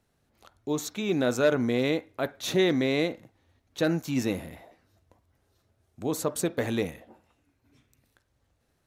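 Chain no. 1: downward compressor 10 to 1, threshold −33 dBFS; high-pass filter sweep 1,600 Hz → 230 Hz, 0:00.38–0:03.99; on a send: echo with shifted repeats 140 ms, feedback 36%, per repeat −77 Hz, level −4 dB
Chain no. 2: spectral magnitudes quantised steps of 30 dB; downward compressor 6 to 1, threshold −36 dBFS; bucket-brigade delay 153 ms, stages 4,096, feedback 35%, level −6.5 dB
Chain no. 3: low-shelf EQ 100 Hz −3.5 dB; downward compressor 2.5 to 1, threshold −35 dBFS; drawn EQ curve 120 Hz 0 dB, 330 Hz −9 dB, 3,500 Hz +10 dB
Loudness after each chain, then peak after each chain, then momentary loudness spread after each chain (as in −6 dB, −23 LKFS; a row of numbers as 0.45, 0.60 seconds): −35.0, −39.5, −33.5 LKFS; −17.0, −24.5, −13.0 dBFS; 15, 12, 14 LU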